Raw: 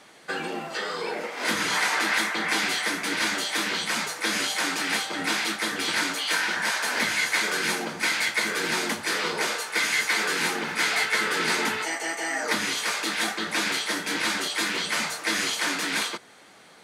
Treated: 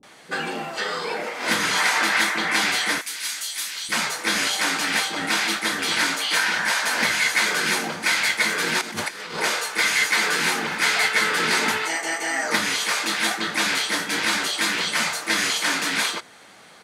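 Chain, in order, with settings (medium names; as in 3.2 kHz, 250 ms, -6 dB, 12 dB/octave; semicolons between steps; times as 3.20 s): 2.98–3.89 s: pre-emphasis filter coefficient 0.97; 8.78–9.37 s: compressor with a negative ratio -33 dBFS, ratio -0.5; bands offset in time lows, highs 30 ms, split 360 Hz; trim +4 dB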